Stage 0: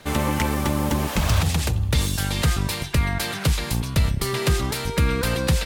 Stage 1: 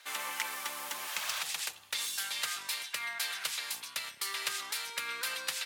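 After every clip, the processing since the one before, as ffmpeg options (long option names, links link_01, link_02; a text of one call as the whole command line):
ffmpeg -i in.wav -af "highpass=1400,volume=-6dB" out.wav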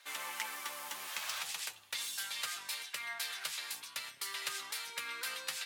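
ffmpeg -i in.wav -af "flanger=delay=7:depth=6.1:regen=51:speed=0.46:shape=sinusoidal" out.wav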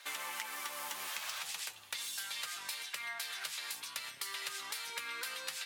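ffmpeg -i in.wav -af "acompressor=threshold=-44dB:ratio=6,volume=6dB" out.wav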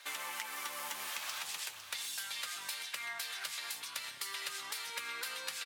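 ffmpeg -i in.wav -af "aecho=1:1:505:0.299" out.wav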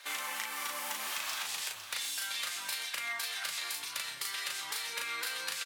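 ffmpeg -i in.wav -filter_complex "[0:a]asplit=2[link_01][link_02];[link_02]adelay=37,volume=-2.5dB[link_03];[link_01][link_03]amix=inputs=2:normalize=0,volume=2dB" out.wav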